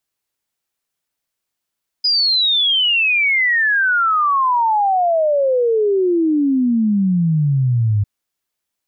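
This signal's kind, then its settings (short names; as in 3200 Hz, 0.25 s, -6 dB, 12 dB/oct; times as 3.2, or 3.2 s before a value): log sweep 5000 Hz -> 100 Hz 6.00 s -12.5 dBFS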